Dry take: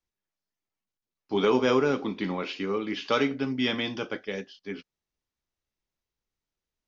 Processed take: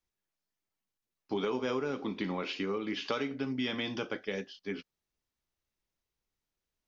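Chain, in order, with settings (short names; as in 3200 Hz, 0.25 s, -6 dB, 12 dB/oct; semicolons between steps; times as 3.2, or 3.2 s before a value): compressor 4:1, threshold -31 dBFS, peak gain reduction 11 dB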